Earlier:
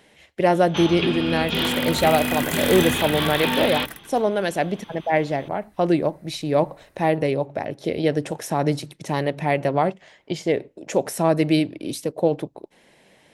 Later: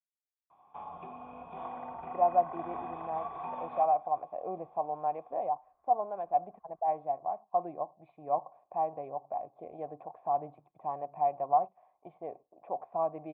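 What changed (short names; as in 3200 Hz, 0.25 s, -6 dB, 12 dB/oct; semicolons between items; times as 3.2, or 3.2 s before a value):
speech: entry +1.75 s; second sound: add synth low-pass 1700 Hz, resonance Q 1.9; master: add vocal tract filter a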